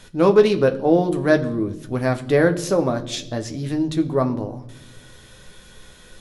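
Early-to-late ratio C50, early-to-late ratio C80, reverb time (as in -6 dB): 15.5 dB, 18.5 dB, not exponential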